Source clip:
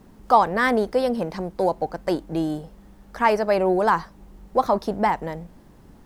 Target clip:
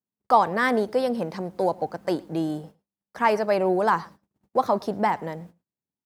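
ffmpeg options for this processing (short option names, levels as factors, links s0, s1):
-af "agate=range=0.00708:threshold=0.01:ratio=16:detection=peak,highpass=f=90:w=0.5412,highpass=f=90:w=1.3066,aecho=1:1:111:0.0631,volume=0.794"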